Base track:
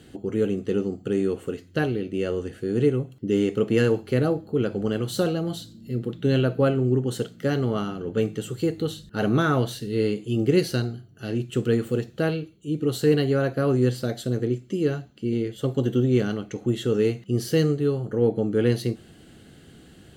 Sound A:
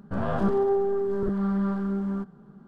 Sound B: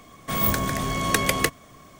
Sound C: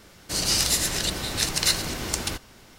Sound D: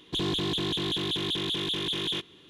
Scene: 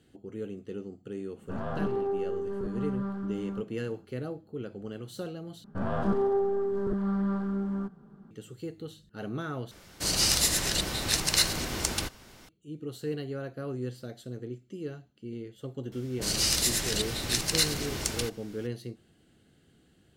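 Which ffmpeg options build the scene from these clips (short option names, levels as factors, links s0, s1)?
-filter_complex "[1:a]asplit=2[s0][s1];[3:a]asplit=2[s2][s3];[0:a]volume=0.2[s4];[s3]acrossover=split=930[s5][s6];[s6]adelay=30[s7];[s5][s7]amix=inputs=2:normalize=0[s8];[s4]asplit=3[s9][s10][s11];[s9]atrim=end=5.644[s12];[s1]atrim=end=2.67,asetpts=PTS-STARTPTS,volume=0.708[s13];[s10]atrim=start=8.306:end=9.714[s14];[s2]atrim=end=2.78,asetpts=PTS-STARTPTS,volume=0.794[s15];[s11]atrim=start=12.486[s16];[s0]atrim=end=2.67,asetpts=PTS-STARTPTS,volume=0.447,afade=t=in:d=0.004:c=hsin,afade=t=out:st=2.666:d=0.004:c=hsin,adelay=1380[s17];[s8]atrim=end=2.78,asetpts=PTS-STARTPTS,volume=0.668,afade=t=in:d=0.004:c=hsin,afade=t=out:st=2.776:d=0.004:c=hsin,adelay=15890[s18];[s12][s13]acrossfade=d=0.004:c1=hsin:c2=hsin[s19];[s19][s14]acrossfade=d=0.004:c1=hsin:c2=hsin[s20];[s20][s15]acrossfade=d=0.004:c1=hsin:c2=hsin[s21];[s21][s16]acrossfade=d=0.004:c1=hsin:c2=hsin[s22];[s22][s17][s18]amix=inputs=3:normalize=0"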